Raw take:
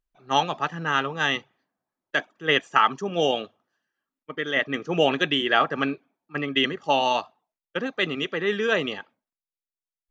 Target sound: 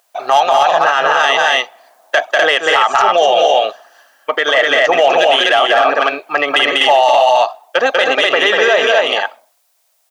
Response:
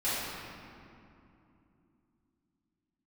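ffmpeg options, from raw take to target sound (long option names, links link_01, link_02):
-af "highshelf=frequency=3600:gain=7,acompressor=threshold=-41dB:ratio=2.5,asoftclip=type=tanh:threshold=-24.5dB,highpass=frequency=670:width_type=q:width=4.2,asoftclip=type=hard:threshold=-22dB,aecho=1:1:193|249:0.531|0.708,alimiter=level_in=28.5dB:limit=-1dB:release=50:level=0:latency=1,volume=-1.5dB"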